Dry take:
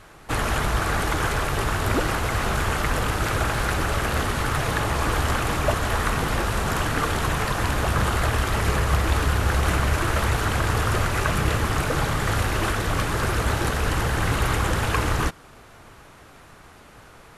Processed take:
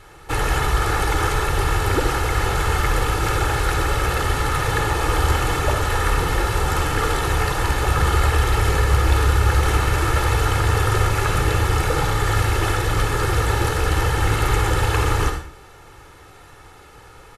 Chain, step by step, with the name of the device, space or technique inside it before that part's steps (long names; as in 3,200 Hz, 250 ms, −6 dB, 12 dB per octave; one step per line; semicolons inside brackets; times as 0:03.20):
microphone above a desk (comb filter 2.3 ms, depth 63%; convolution reverb RT60 0.50 s, pre-delay 48 ms, DRR 5 dB)